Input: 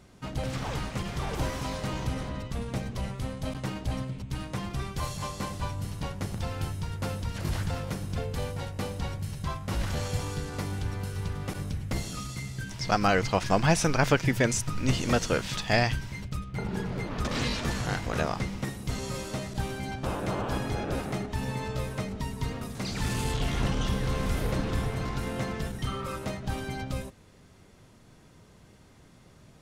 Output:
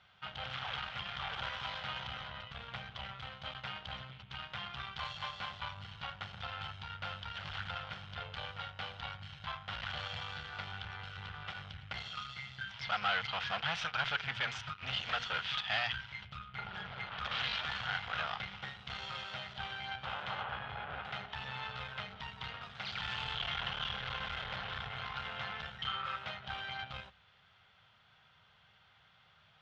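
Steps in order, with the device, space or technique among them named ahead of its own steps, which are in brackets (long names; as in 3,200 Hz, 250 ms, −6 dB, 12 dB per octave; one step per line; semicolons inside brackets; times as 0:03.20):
0:20.44–0:21.05: Bessel low-pass filter 1,900 Hz, order 2
scooped metal amplifier (tube saturation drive 29 dB, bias 0.75; loudspeaker in its box 110–3,600 Hz, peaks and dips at 780 Hz +7 dB, 1,400 Hz +9 dB, 3,200 Hz +8 dB; guitar amp tone stack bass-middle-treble 10-0-10)
hum removal 60.62 Hz, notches 8
level +4.5 dB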